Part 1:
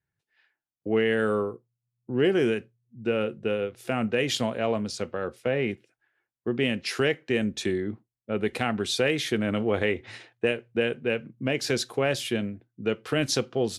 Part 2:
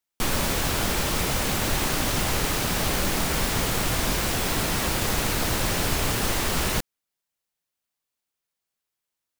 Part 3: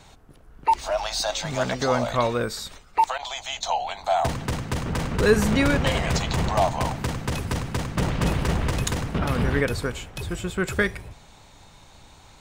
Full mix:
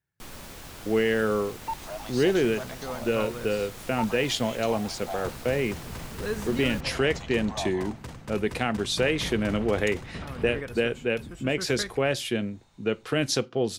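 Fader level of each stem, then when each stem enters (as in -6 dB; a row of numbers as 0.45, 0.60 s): 0.0, -18.0, -13.0 dB; 0.00, 0.00, 1.00 s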